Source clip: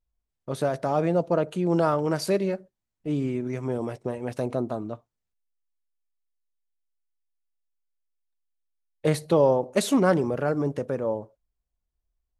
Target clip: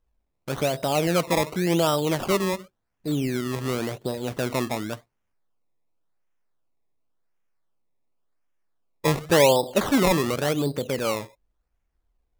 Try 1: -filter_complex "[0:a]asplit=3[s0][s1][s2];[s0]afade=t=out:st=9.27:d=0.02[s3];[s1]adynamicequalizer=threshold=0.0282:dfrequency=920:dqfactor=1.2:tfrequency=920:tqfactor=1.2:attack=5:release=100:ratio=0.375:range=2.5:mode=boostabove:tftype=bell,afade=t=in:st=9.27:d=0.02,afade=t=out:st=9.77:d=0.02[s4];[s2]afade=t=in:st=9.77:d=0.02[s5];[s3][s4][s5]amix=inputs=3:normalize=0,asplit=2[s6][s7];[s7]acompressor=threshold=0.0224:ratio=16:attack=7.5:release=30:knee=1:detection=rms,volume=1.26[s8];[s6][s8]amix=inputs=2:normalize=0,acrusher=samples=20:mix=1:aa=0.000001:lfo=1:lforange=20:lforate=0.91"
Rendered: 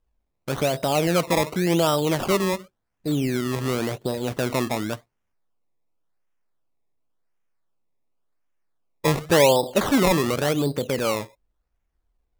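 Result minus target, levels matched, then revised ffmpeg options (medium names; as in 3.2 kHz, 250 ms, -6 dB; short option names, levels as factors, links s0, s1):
compression: peak gain reduction -9 dB
-filter_complex "[0:a]asplit=3[s0][s1][s2];[s0]afade=t=out:st=9.27:d=0.02[s3];[s1]adynamicequalizer=threshold=0.0282:dfrequency=920:dqfactor=1.2:tfrequency=920:tqfactor=1.2:attack=5:release=100:ratio=0.375:range=2.5:mode=boostabove:tftype=bell,afade=t=in:st=9.27:d=0.02,afade=t=out:st=9.77:d=0.02[s4];[s2]afade=t=in:st=9.77:d=0.02[s5];[s3][s4][s5]amix=inputs=3:normalize=0,asplit=2[s6][s7];[s7]acompressor=threshold=0.0075:ratio=16:attack=7.5:release=30:knee=1:detection=rms,volume=1.26[s8];[s6][s8]amix=inputs=2:normalize=0,acrusher=samples=20:mix=1:aa=0.000001:lfo=1:lforange=20:lforate=0.91"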